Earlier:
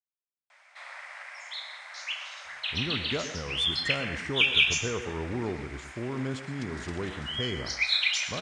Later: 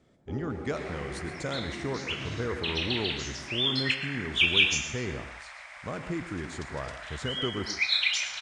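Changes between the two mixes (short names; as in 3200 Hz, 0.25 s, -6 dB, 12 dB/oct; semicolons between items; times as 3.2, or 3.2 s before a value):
speech: entry -2.45 s; first sound: unmuted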